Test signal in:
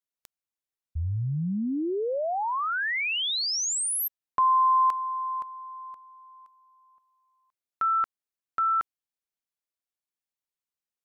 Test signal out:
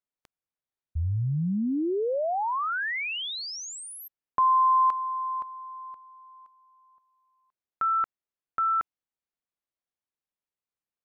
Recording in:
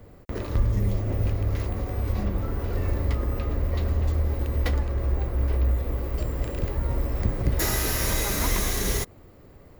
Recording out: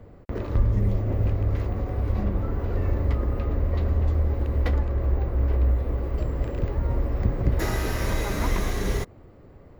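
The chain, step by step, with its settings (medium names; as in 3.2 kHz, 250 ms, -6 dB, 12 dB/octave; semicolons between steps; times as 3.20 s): low-pass 1.7 kHz 6 dB/octave; trim +1.5 dB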